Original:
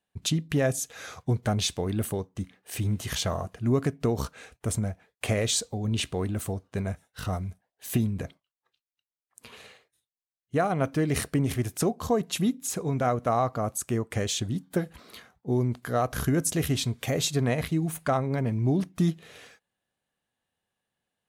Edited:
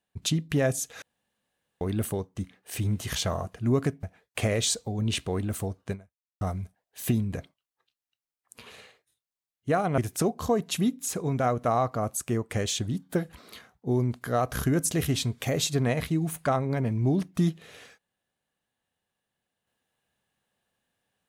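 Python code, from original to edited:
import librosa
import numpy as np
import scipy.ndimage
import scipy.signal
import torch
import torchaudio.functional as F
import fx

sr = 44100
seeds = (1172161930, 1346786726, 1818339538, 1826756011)

y = fx.edit(x, sr, fx.room_tone_fill(start_s=1.02, length_s=0.79),
    fx.cut(start_s=4.03, length_s=0.86),
    fx.fade_out_span(start_s=6.77, length_s=0.5, curve='exp'),
    fx.cut(start_s=10.84, length_s=0.75), tone=tone)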